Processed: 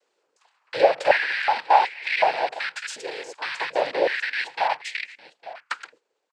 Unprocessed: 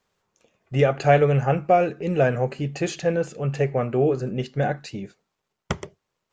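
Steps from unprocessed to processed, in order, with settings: rattle on loud lows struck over -30 dBFS, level -15 dBFS; 2.79–3.38 s: differentiator; in parallel at +2.5 dB: compression, threshold -26 dBFS, peak gain reduction 14 dB; on the sum: noise-vocoded speech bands 8; on a send: delay 856 ms -17.5 dB; on the sum: step-sequenced high-pass 2.7 Hz 450–2100 Hz; trim -8 dB

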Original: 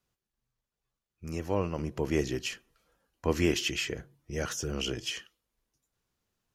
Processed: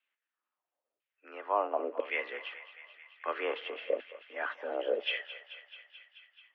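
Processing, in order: LFO band-pass saw down 1 Hz 370–2600 Hz; thinning echo 217 ms, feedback 77%, high-pass 710 Hz, level -12.5 dB; mistuned SSB +110 Hz 160–3400 Hz; trim +8.5 dB

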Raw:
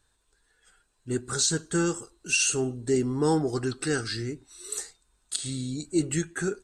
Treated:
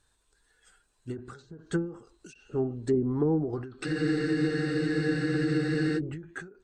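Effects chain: low-pass that closes with the level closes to 450 Hz, closed at -20.5 dBFS; spectral freeze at 3.87 s, 2.10 s; endings held to a fixed fall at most 110 dB/s

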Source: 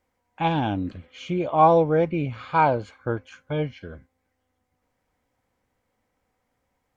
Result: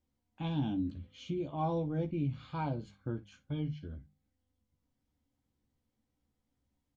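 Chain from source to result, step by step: treble shelf 3.7 kHz -9.5 dB; hum notches 50/100/150/200 Hz; early reflections 14 ms -5.5 dB, 59 ms -17.5 dB; in parallel at -2 dB: compression, threshold -31 dBFS, peak gain reduction 19.5 dB; on the sum: high-order bell 1 kHz -13.5 dB 2.9 oct; trim -8.5 dB

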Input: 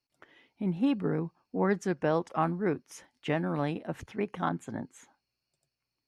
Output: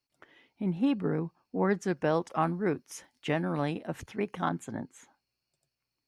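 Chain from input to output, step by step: 1.87–4.67 s: treble shelf 4.5 kHz +6 dB

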